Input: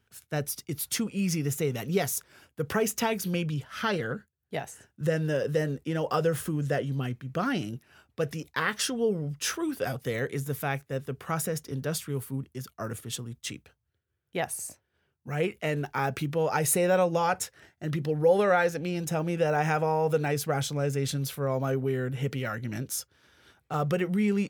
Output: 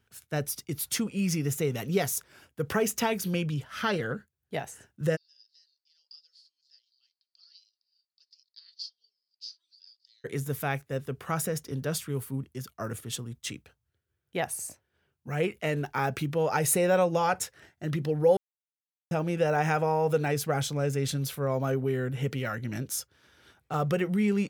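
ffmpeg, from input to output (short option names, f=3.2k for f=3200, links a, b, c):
-filter_complex "[0:a]asplit=3[a][b][c];[a]afade=t=out:st=5.15:d=0.02[d];[b]asuperpass=centerf=4600:order=4:qfactor=6.5,afade=t=in:st=5.15:d=0.02,afade=t=out:st=10.24:d=0.02[e];[c]afade=t=in:st=10.24:d=0.02[f];[d][e][f]amix=inputs=3:normalize=0,asplit=3[g][h][i];[g]atrim=end=18.37,asetpts=PTS-STARTPTS,afade=t=out:st=18.366:d=0.004:c=hsin[j];[h]atrim=start=18.37:end=19.11,asetpts=PTS-STARTPTS,volume=0[k];[i]atrim=start=19.11,asetpts=PTS-STARTPTS,afade=t=in:d=0.004:c=hsin[l];[j][k][l]concat=n=3:v=0:a=1"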